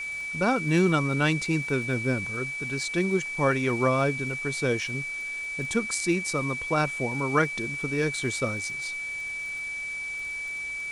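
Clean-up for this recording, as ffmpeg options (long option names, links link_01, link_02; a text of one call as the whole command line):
ffmpeg -i in.wav -af "adeclick=threshold=4,bandreject=frequency=2300:width=30,afwtdn=0.0045" out.wav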